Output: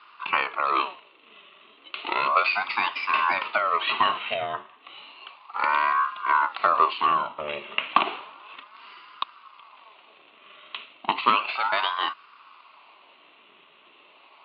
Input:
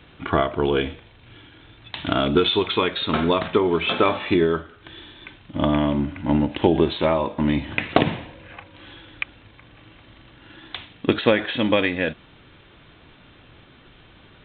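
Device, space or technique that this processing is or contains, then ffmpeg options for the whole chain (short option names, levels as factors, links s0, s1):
voice changer toy: -af "aeval=exprs='val(0)*sin(2*PI*810*n/s+810*0.65/0.33*sin(2*PI*0.33*n/s))':c=same,highpass=470,equalizer=f=500:t=q:w=4:g=-10,equalizer=f=760:t=q:w=4:g=-6,equalizer=f=1100:t=q:w=4:g=8,equalizer=f=1700:t=q:w=4:g=-9,equalizer=f=2700:t=q:w=4:g=7,lowpass=f=3600:w=0.5412,lowpass=f=3600:w=1.3066"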